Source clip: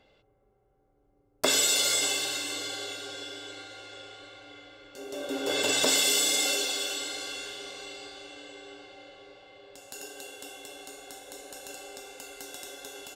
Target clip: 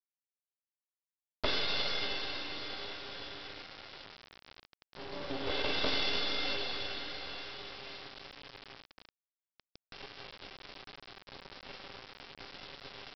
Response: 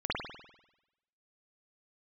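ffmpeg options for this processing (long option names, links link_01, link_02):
-af "aeval=exprs='if(lt(val(0),0),0.251*val(0),val(0))':channel_layout=same,aresample=11025,acrusher=bits=4:dc=4:mix=0:aa=0.000001,aresample=44100,volume=-1.5dB"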